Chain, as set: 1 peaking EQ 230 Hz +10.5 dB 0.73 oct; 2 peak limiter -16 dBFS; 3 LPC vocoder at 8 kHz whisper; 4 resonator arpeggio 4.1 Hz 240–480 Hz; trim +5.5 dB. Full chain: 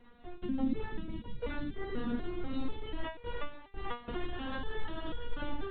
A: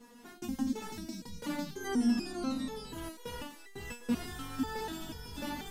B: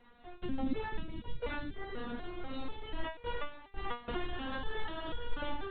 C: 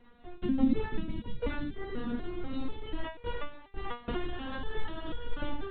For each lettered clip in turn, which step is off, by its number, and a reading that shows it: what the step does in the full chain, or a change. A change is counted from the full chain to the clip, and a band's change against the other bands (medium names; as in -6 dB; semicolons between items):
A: 3, 250 Hz band +4.5 dB; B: 1, 250 Hz band -6.0 dB; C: 2, crest factor change +3.0 dB